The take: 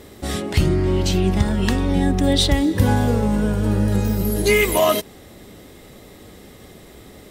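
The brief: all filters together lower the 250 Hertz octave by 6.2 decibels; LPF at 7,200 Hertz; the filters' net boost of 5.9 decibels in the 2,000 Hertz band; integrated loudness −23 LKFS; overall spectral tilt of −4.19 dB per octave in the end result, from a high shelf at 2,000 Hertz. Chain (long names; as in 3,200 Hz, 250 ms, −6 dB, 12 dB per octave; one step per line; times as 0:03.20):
low-pass filter 7,200 Hz
parametric band 250 Hz −8.5 dB
high-shelf EQ 2,000 Hz +5.5 dB
parametric band 2,000 Hz +3.5 dB
level −4 dB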